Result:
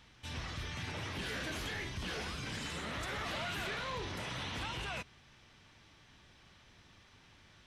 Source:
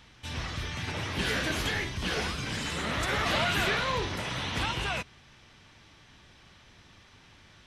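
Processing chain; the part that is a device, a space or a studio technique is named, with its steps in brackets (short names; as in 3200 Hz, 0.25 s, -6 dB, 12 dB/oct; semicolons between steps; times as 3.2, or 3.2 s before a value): soft clipper into limiter (soft clip -21.5 dBFS, distortion -20 dB; limiter -27 dBFS, peak gain reduction 5 dB); gain -5.5 dB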